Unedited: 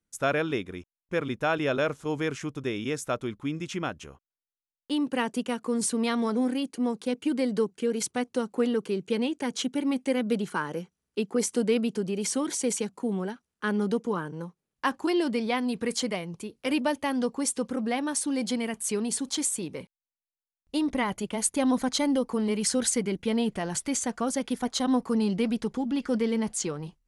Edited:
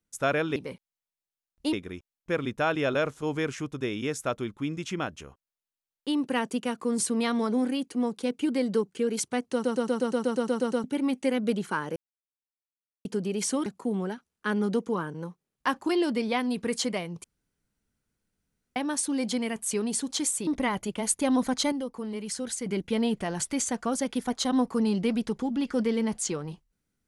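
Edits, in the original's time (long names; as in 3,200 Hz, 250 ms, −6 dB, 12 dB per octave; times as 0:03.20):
0:08.35: stutter in place 0.12 s, 11 plays
0:10.79–0:11.88: silence
0:12.49–0:12.84: remove
0:16.42–0:17.94: fill with room tone
0:19.65–0:20.82: move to 0:00.56
0:22.07–0:23.01: clip gain −7.5 dB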